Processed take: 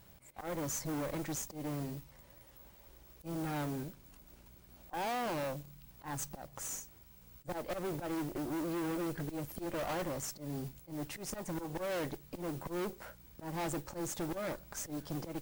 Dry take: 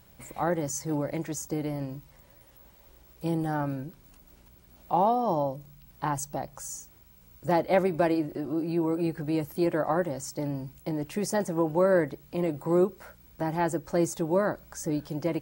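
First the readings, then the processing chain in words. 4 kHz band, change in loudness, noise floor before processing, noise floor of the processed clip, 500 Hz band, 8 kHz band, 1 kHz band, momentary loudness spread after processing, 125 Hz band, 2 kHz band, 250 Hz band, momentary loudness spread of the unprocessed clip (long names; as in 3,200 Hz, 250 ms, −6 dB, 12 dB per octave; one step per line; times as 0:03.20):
−2.0 dB, −10.5 dB, −57 dBFS, −60 dBFS, −12.5 dB, −4.0 dB, −11.5 dB, 19 LU, −9.5 dB, −7.5 dB, −10.5 dB, 11 LU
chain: volume swells 214 ms
tube saturation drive 37 dB, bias 0.8
noise that follows the level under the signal 17 dB
level +2.5 dB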